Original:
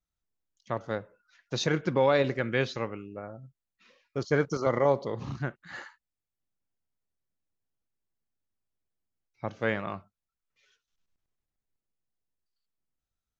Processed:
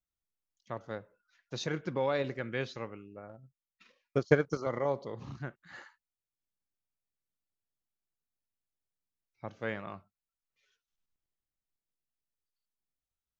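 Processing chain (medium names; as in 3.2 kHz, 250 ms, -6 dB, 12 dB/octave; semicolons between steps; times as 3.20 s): 3.29–4.57 s: transient shaper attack +12 dB, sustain -4 dB; trim -7.5 dB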